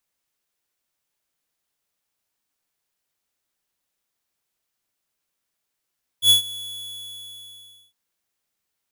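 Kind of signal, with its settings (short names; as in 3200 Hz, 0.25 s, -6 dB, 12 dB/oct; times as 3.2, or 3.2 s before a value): ADSR square 3400 Hz, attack 80 ms, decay 0.117 s, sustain -20.5 dB, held 0.25 s, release 1.46 s -12 dBFS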